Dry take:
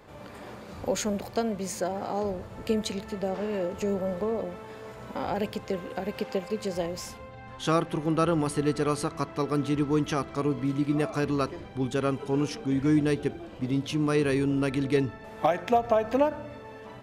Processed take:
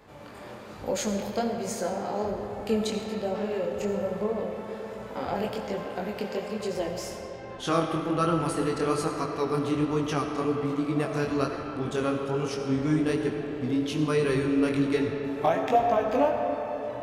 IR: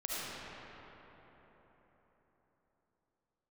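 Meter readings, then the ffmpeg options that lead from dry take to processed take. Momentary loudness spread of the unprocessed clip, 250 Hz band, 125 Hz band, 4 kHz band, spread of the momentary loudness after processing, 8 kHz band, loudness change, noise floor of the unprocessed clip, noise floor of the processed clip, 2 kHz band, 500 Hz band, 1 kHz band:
13 LU, 0.0 dB, -1.5 dB, +0.5 dB, 9 LU, 0.0 dB, +0.5 dB, -45 dBFS, -42 dBFS, +1.0 dB, +1.0 dB, +2.0 dB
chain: -filter_complex "[0:a]flanger=delay=18:depth=7.4:speed=1.2,asplit=2[a][b];[1:a]atrim=start_sample=2205,lowshelf=f=210:g=-9[c];[b][c]afir=irnorm=-1:irlink=0,volume=-5.5dB[d];[a][d]amix=inputs=2:normalize=0"

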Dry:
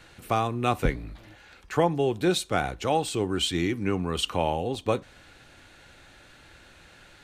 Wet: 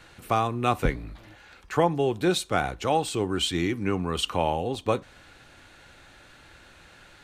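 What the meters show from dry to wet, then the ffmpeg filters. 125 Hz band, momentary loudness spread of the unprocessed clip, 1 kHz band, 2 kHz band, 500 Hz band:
0.0 dB, 5 LU, +1.5 dB, +1.0 dB, +0.5 dB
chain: -af "equalizer=f=1.1k:w=1.5:g=2.5"

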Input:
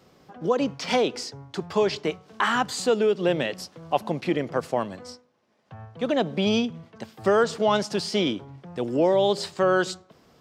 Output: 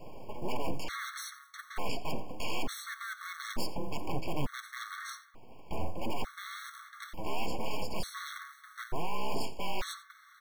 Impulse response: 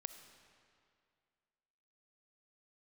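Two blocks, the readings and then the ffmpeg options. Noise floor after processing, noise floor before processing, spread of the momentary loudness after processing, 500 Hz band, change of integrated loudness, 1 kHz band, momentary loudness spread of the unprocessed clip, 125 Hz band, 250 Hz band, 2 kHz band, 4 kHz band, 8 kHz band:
-58 dBFS, -59 dBFS, 9 LU, -19.0 dB, -14.5 dB, -11.0 dB, 14 LU, -9.0 dB, -15.5 dB, -9.5 dB, -11.0 dB, -7.5 dB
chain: -filter_complex "[0:a]highpass=84,equalizer=f=6.5k:t=o:w=2.6:g=-14.5,dynaudnorm=f=470:g=11:m=6.5dB,alimiter=limit=-16dB:level=0:latency=1:release=174,areverse,acompressor=threshold=-34dB:ratio=10,areverse,acrusher=bits=6:mode=log:mix=0:aa=0.000001,aeval=exprs='0.0531*sin(PI/2*3.55*val(0)/0.0531)':c=same,afreqshift=-66,aeval=exprs='abs(val(0))':c=same,flanger=delay=5.9:depth=3.1:regen=78:speed=1.4:shape=sinusoidal,asplit=2[a][b];[b]aecho=0:1:87:0.133[c];[a][c]amix=inputs=2:normalize=0,afftfilt=real='re*gt(sin(2*PI*0.56*pts/sr)*(1-2*mod(floor(b*sr/1024/1100),2)),0)':imag='im*gt(sin(2*PI*0.56*pts/sr)*(1-2*mod(floor(b*sr/1024/1100),2)),0)':win_size=1024:overlap=0.75,volume=3dB"

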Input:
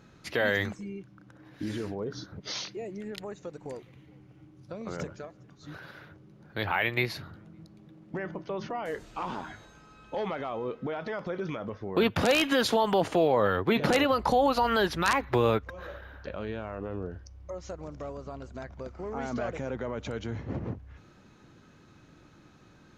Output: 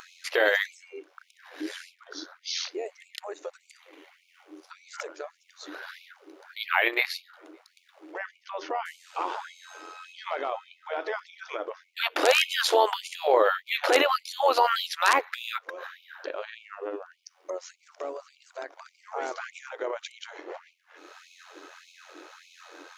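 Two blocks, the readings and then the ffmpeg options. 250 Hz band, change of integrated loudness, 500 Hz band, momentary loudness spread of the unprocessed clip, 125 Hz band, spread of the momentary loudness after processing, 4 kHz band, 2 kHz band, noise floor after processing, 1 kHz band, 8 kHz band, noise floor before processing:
-10.0 dB, +2.0 dB, 0.0 dB, 18 LU, under -40 dB, 21 LU, +4.5 dB, +4.0 dB, -67 dBFS, +2.5 dB, +4.5 dB, -57 dBFS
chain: -af "tremolo=f=87:d=0.571,acompressor=mode=upward:threshold=-39dB:ratio=2.5,afftfilt=real='re*gte(b*sr/1024,260*pow(2200/260,0.5+0.5*sin(2*PI*1.7*pts/sr)))':imag='im*gte(b*sr/1024,260*pow(2200/260,0.5+0.5*sin(2*PI*1.7*pts/sr)))':win_size=1024:overlap=0.75,volume=7dB"

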